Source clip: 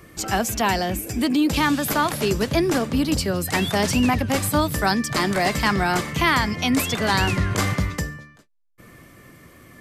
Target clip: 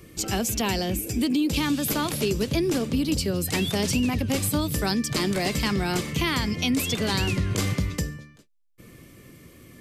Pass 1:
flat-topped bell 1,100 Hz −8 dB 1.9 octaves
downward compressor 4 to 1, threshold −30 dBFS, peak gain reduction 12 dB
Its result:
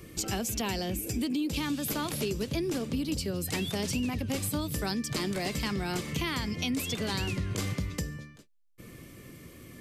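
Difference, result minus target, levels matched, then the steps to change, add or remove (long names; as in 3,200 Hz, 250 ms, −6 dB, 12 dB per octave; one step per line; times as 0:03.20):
downward compressor: peak gain reduction +7 dB
change: downward compressor 4 to 1, threshold −20.5 dBFS, peak gain reduction 5 dB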